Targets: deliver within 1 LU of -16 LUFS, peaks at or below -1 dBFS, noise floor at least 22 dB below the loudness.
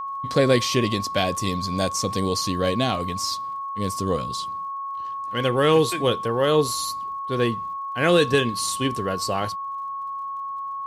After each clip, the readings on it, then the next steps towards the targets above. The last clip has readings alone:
ticks 52/s; steady tone 1100 Hz; tone level -28 dBFS; loudness -23.5 LUFS; peak -5.5 dBFS; loudness target -16.0 LUFS
-> de-click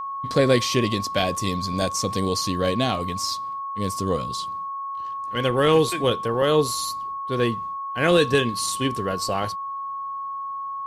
ticks 0.092/s; steady tone 1100 Hz; tone level -28 dBFS
-> notch 1100 Hz, Q 30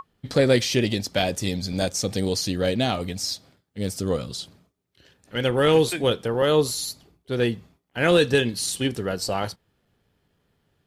steady tone none; loudness -23.5 LUFS; peak -6.0 dBFS; loudness target -16.0 LUFS
-> gain +7.5 dB; limiter -1 dBFS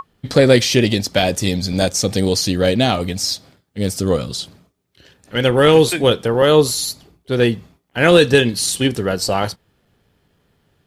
loudness -16.5 LUFS; peak -1.0 dBFS; noise floor -64 dBFS

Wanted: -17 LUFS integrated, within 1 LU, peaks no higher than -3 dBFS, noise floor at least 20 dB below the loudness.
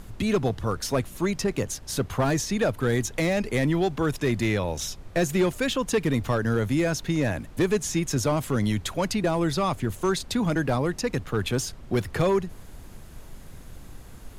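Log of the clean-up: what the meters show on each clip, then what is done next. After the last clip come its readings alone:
clipped 0.7%; flat tops at -16.0 dBFS; noise floor -44 dBFS; noise floor target -46 dBFS; loudness -26.0 LUFS; peak -16.0 dBFS; loudness target -17.0 LUFS
-> clip repair -16 dBFS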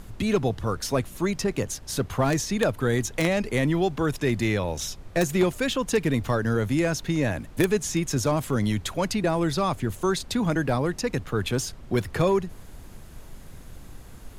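clipped 0.0%; noise floor -44 dBFS; noise floor target -46 dBFS
-> noise print and reduce 6 dB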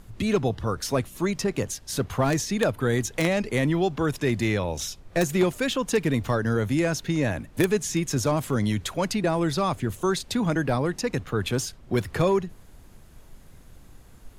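noise floor -50 dBFS; loudness -25.5 LUFS; peak -7.0 dBFS; loudness target -17.0 LUFS
-> gain +8.5 dB; limiter -3 dBFS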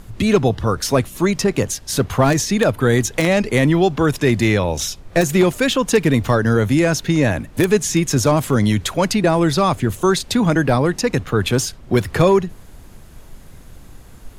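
loudness -17.5 LUFS; peak -3.0 dBFS; noise floor -41 dBFS

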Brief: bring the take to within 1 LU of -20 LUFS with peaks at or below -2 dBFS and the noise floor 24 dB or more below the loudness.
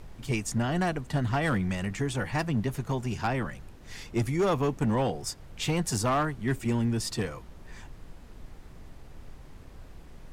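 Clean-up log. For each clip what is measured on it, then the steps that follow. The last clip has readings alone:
clipped 1.0%; flat tops at -20.5 dBFS; noise floor -48 dBFS; noise floor target -54 dBFS; loudness -29.5 LUFS; peak -20.5 dBFS; loudness target -20.0 LUFS
-> clip repair -20.5 dBFS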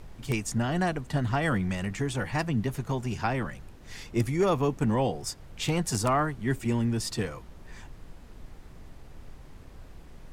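clipped 0.0%; noise floor -48 dBFS; noise floor target -53 dBFS
-> noise print and reduce 6 dB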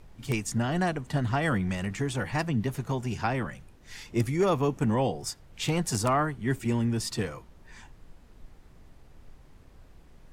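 noise floor -54 dBFS; loudness -29.0 LUFS; peak -11.5 dBFS; loudness target -20.0 LUFS
-> gain +9 dB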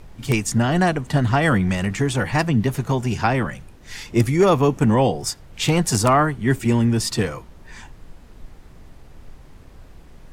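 loudness -20.0 LUFS; peak -2.5 dBFS; noise floor -45 dBFS

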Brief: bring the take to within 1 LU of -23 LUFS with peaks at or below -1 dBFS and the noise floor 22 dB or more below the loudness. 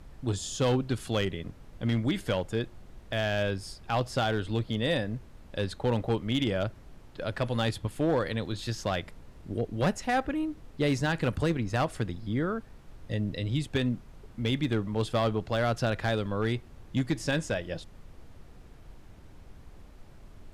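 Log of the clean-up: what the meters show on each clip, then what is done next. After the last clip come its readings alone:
clipped 0.8%; flat tops at -20.0 dBFS; noise floor -51 dBFS; noise floor target -53 dBFS; loudness -30.5 LUFS; peak -20.0 dBFS; loudness target -23.0 LUFS
-> clip repair -20 dBFS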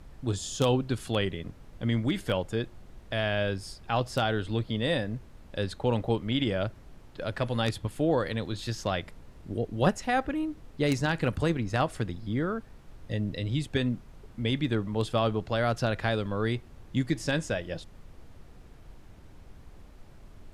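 clipped 0.0%; noise floor -51 dBFS; noise floor target -52 dBFS
-> noise print and reduce 6 dB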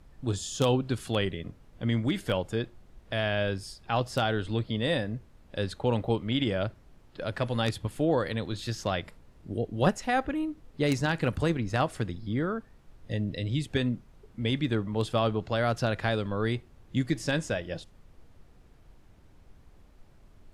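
noise floor -57 dBFS; loudness -30.0 LUFS; peak -11.0 dBFS; loudness target -23.0 LUFS
-> gain +7 dB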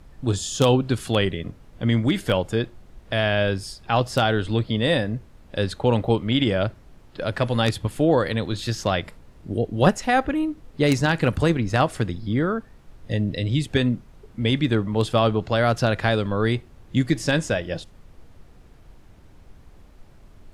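loudness -23.0 LUFS; peak -4.0 dBFS; noise floor -50 dBFS

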